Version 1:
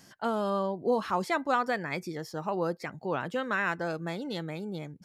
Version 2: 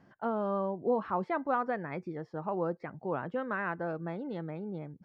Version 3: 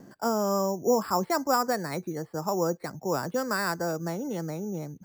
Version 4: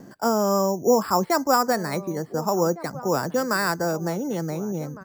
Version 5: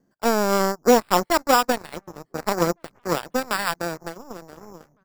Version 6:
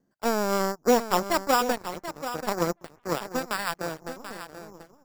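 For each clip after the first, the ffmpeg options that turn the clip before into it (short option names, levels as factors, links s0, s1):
-af "lowpass=1400,volume=0.794"
-filter_complex "[0:a]acrossover=split=190|470|810[s0][s1][s2][s3];[s1]acompressor=mode=upward:threshold=0.00447:ratio=2.5[s4];[s0][s4][s2][s3]amix=inputs=4:normalize=0,acrusher=samples=7:mix=1:aa=0.000001,volume=1.88"
-filter_complex "[0:a]asplit=2[s0][s1];[s1]adelay=1458,volume=0.158,highshelf=f=4000:g=-32.8[s2];[s0][s2]amix=inputs=2:normalize=0,volume=1.78"
-af "aeval=exprs='0.398*(cos(1*acos(clip(val(0)/0.398,-1,1)))-cos(1*PI/2))+0.0562*(cos(3*acos(clip(val(0)/0.398,-1,1)))-cos(3*PI/2))+0.00562*(cos(6*acos(clip(val(0)/0.398,-1,1)))-cos(6*PI/2))+0.0355*(cos(7*acos(clip(val(0)/0.398,-1,1)))-cos(7*PI/2))':c=same,volume=1.68"
-af "aecho=1:1:735:0.282,volume=0.562"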